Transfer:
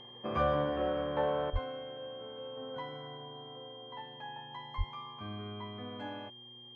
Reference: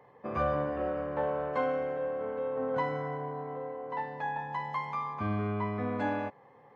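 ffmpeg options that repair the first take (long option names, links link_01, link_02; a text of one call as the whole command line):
ffmpeg -i in.wav -filter_complex "[0:a]bandreject=frequency=120.7:width_type=h:width=4,bandreject=frequency=241.4:width_type=h:width=4,bandreject=frequency=362.1:width_type=h:width=4,bandreject=frequency=3200:width=30,asplit=3[link_01][link_02][link_03];[link_01]afade=type=out:start_time=1.52:duration=0.02[link_04];[link_02]highpass=frequency=140:width=0.5412,highpass=frequency=140:width=1.3066,afade=type=in:start_time=1.52:duration=0.02,afade=type=out:start_time=1.64:duration=0.02[link_05];[link_03]afade=type=in:start_time=1.64:duration=0.02[link_06];[link_04][link_05][link_06]amix=inputs=3:normalize=0,asplit=3[link_07][link_08][link_09];[link_07]afade=type=out:start_time=4.77:duration=0.02[link_10];[link_08]highpass=frequency=140:width=0.5412,highpass=frequency=140:width=1.3066,afade=type=in:start_time=4.77:duration=0.02,afade=type=out:start_time=4.89:duration=0.02[link_11];[link_09]afade=type=in:start_time=4.89:duration=0.02[link_12];[link_10][link_11][link_12]amix=inputs=3:normalize=0,asetnsamples=nb_out_samples=441:pad=0,asendcmd='1.5 volume volume 11dB',volume=0dB" out.wav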